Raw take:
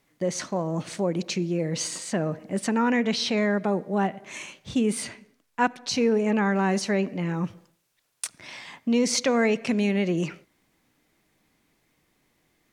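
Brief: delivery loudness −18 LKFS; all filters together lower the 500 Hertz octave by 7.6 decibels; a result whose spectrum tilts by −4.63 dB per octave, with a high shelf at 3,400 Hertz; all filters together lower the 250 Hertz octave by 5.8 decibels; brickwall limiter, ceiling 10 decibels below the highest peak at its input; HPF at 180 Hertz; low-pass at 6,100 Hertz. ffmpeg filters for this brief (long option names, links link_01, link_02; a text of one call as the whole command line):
ffmpeg -i in.wav -af "highpass=180,lowpass=6100,equalizer=frequency=250:width_type=o:gain=-3.5,equalizer=frequency=500:width_type=o:gain=-8,highshelf=frequency=3400:gain=-6.5,volume=15.5dB,alimiter=limit=-6.5dB:level=0:latency=1" out.wav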